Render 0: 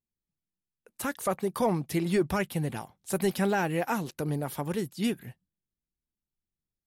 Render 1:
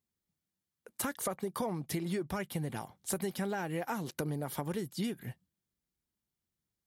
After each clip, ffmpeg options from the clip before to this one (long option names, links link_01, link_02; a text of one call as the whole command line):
ffmpeg -i in.wav -af "highpass=59,bandreject=frequency=2600:width=13,acompressor=threshold=-36dB:ratio=10,volume=4dB" out.wav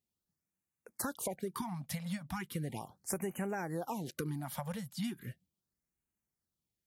ffmpeg -i in.wav -af "afftfilt=real='re*(1-between(b*sr/1024,330*pow(4300/330,0.5+0.5*sin(2*PI*0.37*pts/sr))/1.41,330*pow(4300/330,0.5+0.5*sin(2*PI*0.37*pts/sr))*1.41))':imag='im*(1-between(b*sr/1024,330*pow(4300/330,0.5+0.5*sin(2*PI*0.37*pts/sr))/1.41,330*pow(4300/330,0.5+0.5*sin(2*PI*0.37*pts/sr))*1.41))':win_size=1024:overlap=0.75,volume=-2dB" out.wav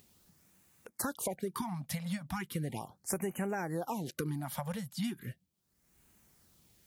ffmpeg -i in.wav -af "acompressor=mode=upward:threshold=-49dB:ratio=2.5,volume=2dB" out.wav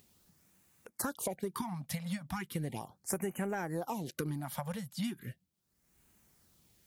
ffmpeg -i in.wav -af "aeval=exprs='0.0944*(cos(1*acos(clip(val(0)/0.0944,-1,1)))-cos(1*PI/2))+0.00237*(cos(7*acos(clip(val(0)/0.0944,-1,1)))-cos(7*PI/2))':channel_layout=same" out.wav